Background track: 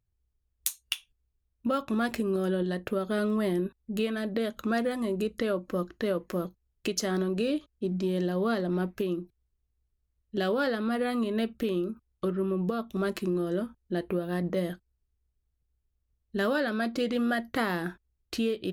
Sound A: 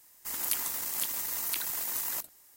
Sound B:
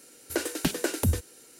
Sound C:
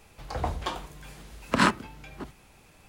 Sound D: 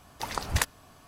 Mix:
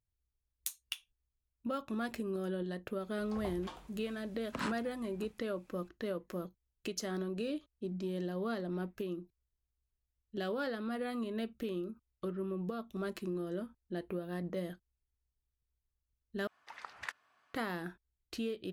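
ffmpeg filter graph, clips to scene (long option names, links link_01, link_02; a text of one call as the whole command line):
ffmpeg -i bed.wav -i cue0.wav -i cue1.wav -i cue2.wav -i cue3.wav -filter_complex "[0:a]volume=-9dB[link_01];[3:a]alimiter=limit=-10dB:level=0:latency=1:release=71[link_02];[4:a]bandpass=frequency=1700:width_type=q:width=1.4:csg=0[link_03];[link_01]asplit=2[link_04][link_05];[link_04]atrim=end=16.474[link_06];[link_03]atrim=end=1.07,asetpts=PTS-STARTPTS,volume=-9.5dB[link_07];[link_05]atrim=start=17.536[link_08];[link_02]atrim=end=2.88,asetpts=PTS-STARTPTS,volume=-15.5dB,afade=type=in:duration=0.004:curve=hsin,afade=type=out:start_time=2.876:duration=0.004:curve=hsin,adelay=3010[link_09];[link_06][link_07]acrossfade=duration=0.004:curve1=hsin:curve2=hsin[link_10];[link_10][link_08]acrossfade=duration=0.004:curve1=hsin:curve2=hsin[link_11];[link_11][link_09]amix=inputs=2:normalize=0" out.wav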